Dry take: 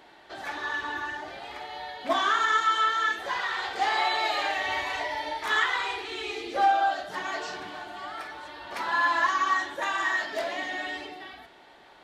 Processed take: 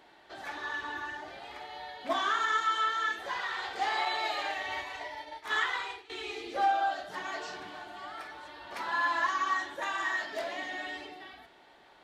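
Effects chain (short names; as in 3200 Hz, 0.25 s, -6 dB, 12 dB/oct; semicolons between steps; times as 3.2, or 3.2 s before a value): 4.05–6.1 expander -26 dBFS; gain -5 dB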